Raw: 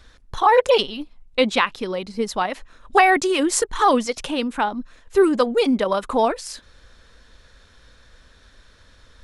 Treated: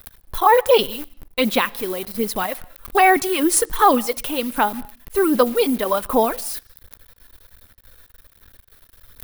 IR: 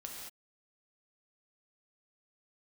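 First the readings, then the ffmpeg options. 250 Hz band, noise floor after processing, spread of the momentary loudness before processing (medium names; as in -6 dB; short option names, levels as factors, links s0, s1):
+0.5 dB, -55 dBFS, 14 LU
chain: -filter_complex "[0:a]aphaser=in_gain=1:out_gain=1:delay=3:decay=0.4:speed=1.3:type=sinusoidal,acrusher=bits=7:dc=4:mix=0:aa=0.000001,aexciter=amount=2.7:drive=9.7:freq=9600,asplit=2[s0][s1];[1:a]atrim=start_sample=2205,lowpass=6000[s2];[s1][s2]afir=irnorm=-1:irlink=0,volume=0.119[s3];[s0][s3]amix=inputs=2:normalize=0,volume=0.841"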